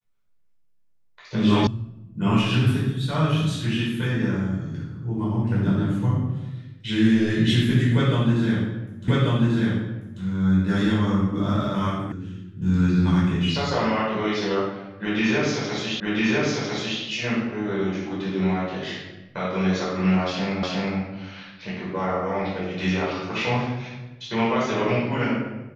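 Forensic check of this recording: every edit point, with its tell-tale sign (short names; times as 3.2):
1.67 sound cut off
9.08 repeat of the last 1.14 s
12.12 sound cut off
16 repeat of the last 1 s
20.63 repeat of the last 0.36 s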